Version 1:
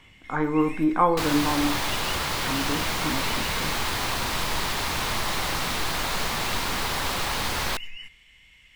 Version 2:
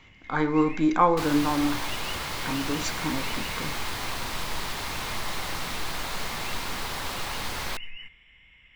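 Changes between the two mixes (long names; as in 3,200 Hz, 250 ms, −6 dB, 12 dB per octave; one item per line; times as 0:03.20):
speech: remove low-pass filter 2,000 Hz
first sound: add Savitzky-Golay smoothing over 25 samples
second sound −5.5 dB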